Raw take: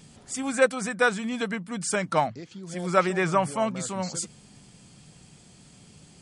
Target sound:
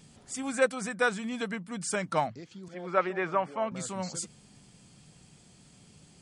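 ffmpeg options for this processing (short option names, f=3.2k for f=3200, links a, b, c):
-filter_complex "[0:a]asettb=1/sr,asplit=3[a][b][c];[a]atrim=end=2.684[d];[b]atrim=start=2.68:end=3.72,asetpts=PTS-STARTPTS,afade=t=in:d=0.004:c=qsin,afade=t=out:st=1.036:d=0.004:c=qsin,highpass=270,lowpass=2.6k[e];[c]atrim=start=3.716[f];[d][e]acrossfade=d=0.004:c1=hsin:c2=qsin[g];[g][f]acrossfade=d=0.004:c1=qsin:c2=hsin,volume=-4.5dB"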